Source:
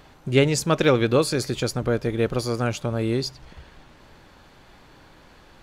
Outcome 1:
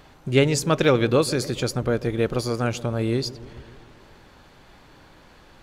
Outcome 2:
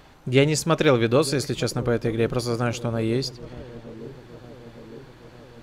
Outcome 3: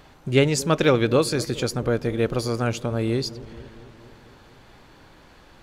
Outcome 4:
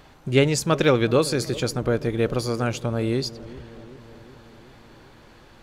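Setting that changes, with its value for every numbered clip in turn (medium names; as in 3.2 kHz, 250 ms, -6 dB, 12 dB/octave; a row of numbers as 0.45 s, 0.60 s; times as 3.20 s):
feedback echo behind a low-pass, time: 140 ms, 908 ms, 228 ms, 378 ms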